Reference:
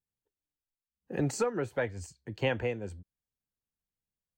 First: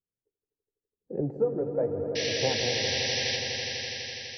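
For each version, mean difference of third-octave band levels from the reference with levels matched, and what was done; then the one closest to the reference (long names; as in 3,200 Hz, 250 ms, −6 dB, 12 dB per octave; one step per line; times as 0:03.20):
13.0 dB: flanger 0.84 Hz, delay 4.9 ms, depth 9 ms, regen −57%
low-pass filter sweep 440 Hz → 1,000 Hz, 0:00.97–0:03.30
sound drawn into the spectrogram noise, 0:02.15–0:03.37, 1,600–6,000 Hz −33 dBFS
on a send: echo that builds up and dies away 83 ms, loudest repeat 5, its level −10.5 dB
on the sum: level +1 dB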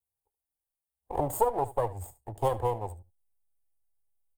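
7.5 dB: lower of the sound and its delayed copy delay 0.59 ms
drawn EQ curve 110 Hz 0 dB, 180 Hz −16 dB, 830 Hz +13 dB, 1,500 Hz −17 dB, 3,800 Hz −13 dB, 5,600 Hz −18 dB, 8,600 Hz +7 dB
in parallel at −7 dB: slack as between gear wheels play −39 dBFS
on the sum: single-tap delay 74 ms −18 dB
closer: second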